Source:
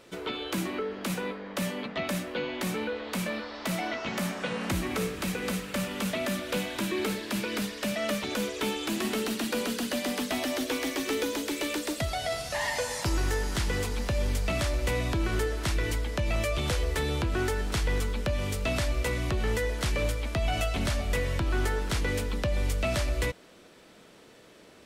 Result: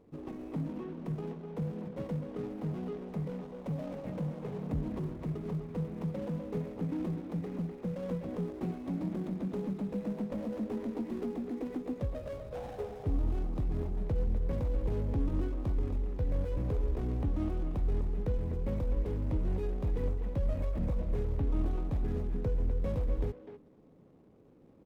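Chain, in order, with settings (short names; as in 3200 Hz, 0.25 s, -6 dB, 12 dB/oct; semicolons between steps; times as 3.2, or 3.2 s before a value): median filter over 25 samples; tilt shelf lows +6 dB, about 900 Hz; notch 450 Hz, Q 12; pitch shift -3 st; speakerphone echo 0.25 s, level -7 dB; gain -7.5 dB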